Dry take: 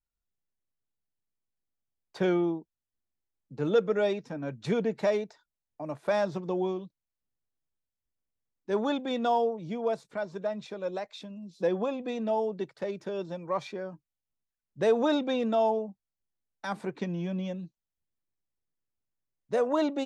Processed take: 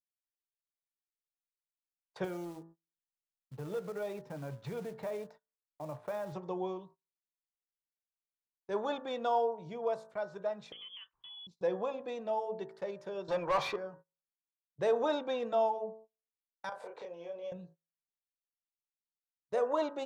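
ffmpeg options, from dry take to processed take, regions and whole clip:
-filter_complex "[0:a]asettb=1/sr,asplit=3[s0][s1][s2];[s0]atrim=end=2.244[s3];[s1]atrim=start=2.24:end=6.33,asetpts=PTS-STARTPTS,afade=t=in:d=0.004:c=qsin,afade=t=out:st=4.086:d=0.004:c=qsin,bass=f=250:g=5,treble=f=4000:g=-11,acompressor=threshold=0.0316:ratio=4:attack=3.2:release=140:knee=1:detection=peak,acrusher=bits=5:mode=log:mix=0:aa=0.000001[s4];[s2]atrim=start=6.326[s5];[s3][s4]acrossfade=d=0.004:c1=hsin:c2=qsin[s6];[s6][s5]acrossfade=d=0.004:c1=qsin:c2=hsin,asettb=1/sr,asplit=3[s7][s8][s9];[s7]atrim=end=10.724[s10];[s8]atrim=start=10.72:end=11.47,asetpts=PTS-STARTPTS,afade=t=in:d=0.004:c=qsin,afade=t=out:st=0.746:d=0.004:c=qsin,lowpass=f=3100:t=q:w=0.5098,lowpass=f=3100:t=q:w=0.6013,lowpass=f=3100:t=q:w=0.9,lowpass=f=3100:t=q:w=2.563,afreqshift=-3600,acompressor=threshold=0.0112:ratio=8:attack=3.2:release=140:knee=1:detection=peak[s11];[s9]atrim=start=11.466[s12];[s10][s11]acrossfade=d=0.004:c1=hsin:c2=qsin[s13];[s13][s12]acrossfade=d=0.004:c1=qsin:c2=hsin,asettb=1/sr,asplit=3[s14][s15][s16];[s14]atrim=end=13.284[s17];[s15]atrim=start=13.28:end=13.76,asetpts=PTS-STARTPTS,afade=t=in:d=0.004:c=qsin,afade=t=out:st=0.476:d=0.004:c=qsin,equalizer=f=4400:w=0.77:g=5,asplit=2[s18][s19];[s19]highpass=f=720:p=1,volume=20,asoftclip=type=tanh:threshold=0.126[s20];[s18][s20]amix=inputs=2:normalize=0,lowpass=f=1900:p=1,volume=0.501[s21];[s16]atrim=start=13.756[s22];[s17][s21]acrossfade=d=0.004:c1=hsin:c2=qsin[s23];[s23][s22]acrossfade=d=0.004:c1=qsin:c2=hsin,asettb=1/sr,asplit=3[s24][s25][s26];[s24]atrim=end=16.694[s27];[s25]atrim=start=16.69:end=17.52,asetpts=PTS-STARTPTS,afade=t=in:d=0.004:c=qsin,afade=t=out:st=0.826:d=0.004:c=qsin,highpass=f=520:t=q:w=4.5,acompressor=threshold=0.0126:ratio=6:attack=3.2:release=140:knee=1:detection=peak,asplit=2[s28][s29];[s29]adelay=30,volume=0.708[s30];[s28][s30]amix=inputs=2:normalize=0,atrim=end_sample=36603[s31];[s26]atrim=start=17.516[s32];[s27][s31]acrossfade=d=0.004:c1=hsin:c2=qsin[s33];[s33][s32]acrossfade=d=0.004:c1=qsin:c2=hsin,bandreject=f=55.09:t=h:w=4,bandreject=f=110.18:t=h:w=4,bandreject=f=165.27:t=h:w=4,bandreject=f=220.36:t=h:w=4,bandreject=f=275.45:t=h:w=4,bandreject=f=330.54:t=h:w=4,bandreject=f=385.63:t=h:w=4,bandreject=f=440.72:t=h:w=4,bandreject=f=495.81:t=h:w=4,bandreject=f=550.9:t=h:w=4,bandreject=f=605.99:t=h:w=4,bandreject=f=661.08:t=h:w=4,bandreject=f=716.17:t=h:w=4,bandreject=f=771.26:t=h:w=4,bandreject=f=826.35:t=h:w=4,bandreject=f=881.44:t=h:w=4,bandreject=f=936.53:t=h:w=4,bandreject=f=991.62:t=h:w=4,bandreject=f=1046.71:t=h:w=4,bandreject=f=1101.8:t=h:w=4,bandreject=f=1156.89:t=h:w=4,bandreject=f=1211.98:t=h:w=4,bandreject=f=1267.07:t=h:w=4,bandreject=f=1322.16:t=h:w=4,bandreject=f=1377.25:t=h:w=4,bandreject=f=1432.34:t=h:w=4,bandreject=f=1487.43:t=h:w=4,bandreject=f=1542.52:t=h:w=4,bandreject=f=1597.61:t=h:w=4,bandreject=f=1652.7:t=h:w=4,bandreject=f=1707.79:t=h:w=4,bandreject=f=1762.88:t=h:w=4,bandreject=f=1817.97:t=h:w=4,bandreject=f=1873.06:t=h:w=4,agate=range=0.0562:threshold=0.00398:ratio=16:detection=peak,equalizer=f=125:t=o:w=1:g=4,equalizer=f=250:t=o:w=1:g=-8,equalizer=f=500:t=o:w=1:g=4,equalizer=f=1000:t=o:w=1:g=5,volume=0.447"

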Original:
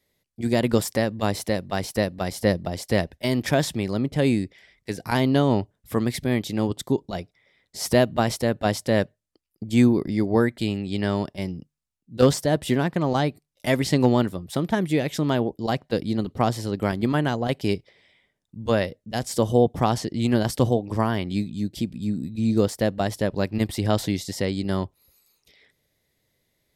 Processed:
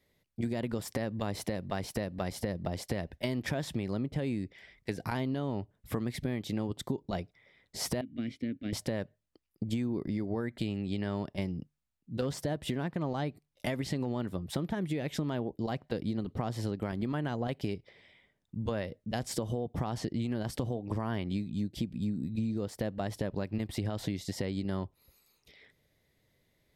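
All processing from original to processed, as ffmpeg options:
-filter_complex "[0:a]asettb=1/sr,asplit=3[s0][s1][s2];[s0]atrim=end=8.014[s3];[s1]atrim=start=8.01:end=8.73,asetpts=PTS-STARTPTS,afade=t=in:d=0.004:c=qsin,afade=t=out:st=0.716:d=0.004:c=qsin,asplit=3[s4][s5][s6];[s4]bandpass=f=270:t=q:w=8,volume=1[s7];[s5]bandpass=f=2290:t=q:w=8,volume=0.501[s8];[s6]bandpass=f=3010:t=q:w=8,volume=0.355[s9];[s7][s8][s9]amix=inputs=3:normalize=0,equalizer=f=71:w=0.71:g=9.5,bandreject=f=3100:w=19[s10];[s2]atrim=start=8.726[s11];[s3][s10]acrossfade=d=0.004:c1=hsin:c2=qsin[s12];[s12][s11]acrossfade=d=0.004:c1=qsin:c2=hsin,alimiter=limit=0.168:level=0:latency=1:release=145,bass=f=250:g=2,treble=f=4000:g=-6,acompressor=threshold=0.0316:ratio=6"

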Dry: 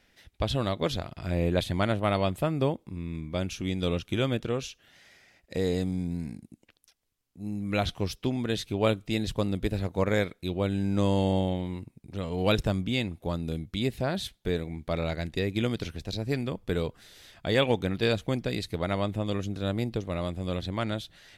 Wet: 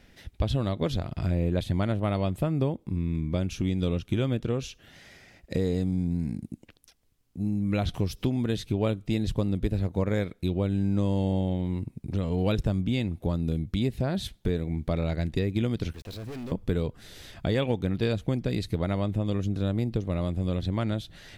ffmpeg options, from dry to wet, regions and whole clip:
-filter_complex "[0:a]asettb=1/sr,asplit=3[s0][s1][s2];[s0]atrim=end=7.944[s3];[s1]atrim=start=7.94:end=8.57,asetpts=PTS-STARTPTS,afade=t=in:d=0.004:c=qsin,afade=t=out:st=0.626:d=0.004:c=qsin,highshelf=f=9500:g=7,acompressor=mode=upward:threshold=0.02:ratio=2.5:attack=3.2:release=140:knee=2.83:detection=peak[s4];[s2]atrim=start=8.566[s5];[s3][s4]acrossfade=d=0.004:c1=hsin:c2=qsin[s6];[s6][s5]acrossfade=d=0.004:c1=qsin:c2=hsin,asettb=1/sr,asplit=3[s7][s8][s9];[s7]atrim=end=15.934[s10];[s8]atrim=start=15.93:end=16.52,asetpts=PTS-STARTPTS,afade=t=in:d=0.004:c=qsin,afade=t=out:st=0.586:d=0.004:c=qsin,bass=f=250:g=-12,treble=f=4000:g=-4,aeval=exprs='val(0)*gte(abs(val(0)),0.00188)':c=same,aeval=exprs='(tanh(178*val(0)+0.2)-tanh(0.2))/178':c=same[s11];[s9]atrim=start=16.516[s12];[s10][s11]acrossfade=d=0.004:c1=hsin:c2=qsin[s13];[s13][s12]acrossfade=d=0.004:c1=qsin:c2=hsin,lowshelf=f=410:g=9.5,acompressor=threshold=0.0282:ratio=2.5,volume=1.58"

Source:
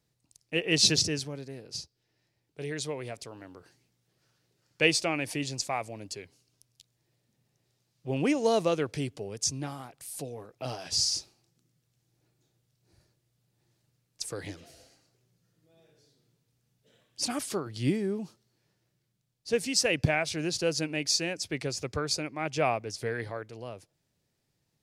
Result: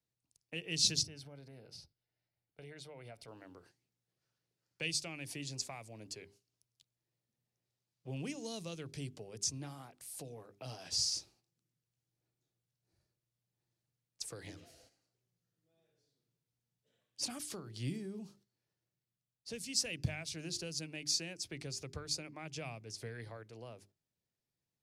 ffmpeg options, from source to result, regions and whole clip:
-filter_complex "[0:a]asettb=1/sr,asplit=3[s0][s1][s2];[s0]atrim=end=1.034[s3];[s1]atrim=start=1.03:end=3.28,asetpts=PTS-STARTPTS,afade=t=in:d=0.004:c=qsin,afade=t=out:st=2.246:d=0.004:c=qsin,equalizer=f=6900:t=o:w=0.53:g=-11,acompressor=threshold=0.00708:ratio=2.5:attack=3.2:release=140:knee=1:detection=peak,aecho=1:1:1.4:0.36,atrim=end_sample=99225[s4];[s2]atrim=start=3.276[s5];[s3][s4]acrossfade=d=0.004:c1=hsin:c2=qsin[s6];[s6][s5]acrossfade=d=0.004:c1=qsin:c2=hsin,bandreject=f=50:t=h:w=6,bandreject=f=100:t=h:w=6,bandreject=f=150:t=h:w=6,bandreject=f=200:t=h:w=6,bandreject=f=250:t=h:w=6,bandreject=f=300:t=h:w=6,bandreject=f=350:t=h:w=6,bandreject=f=400:t=h:w=6,agate=range=0.398:threshold=0.00126:ratio=16:detection=peak,acrossover=split=200|3000[s7][s8][s9];[s8]acompressor=threshold=0.01:ratio=6[s10];[s7][s10][s9]amix=inputs=3:normalize=0,volume=0.473"

